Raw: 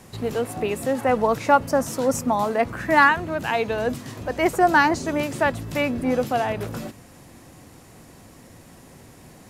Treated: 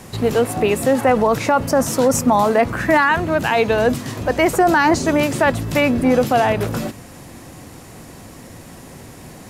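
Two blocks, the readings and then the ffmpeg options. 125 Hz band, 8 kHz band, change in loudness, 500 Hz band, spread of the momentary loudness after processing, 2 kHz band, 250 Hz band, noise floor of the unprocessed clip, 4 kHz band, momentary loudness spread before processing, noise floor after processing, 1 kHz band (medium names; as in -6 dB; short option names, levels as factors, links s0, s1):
+8.0 dB, +8.5 dB, +5.0 dB, +6.5 dB, 5 LU, +3.0 dB, +7.0 dB, -48 dBFS, +6.0 dB, 11 LU, -39 dBFS, +3.5 dB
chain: -af "alimiter=limit=0.188:level=0:latency=1:release=26,volume=2.66"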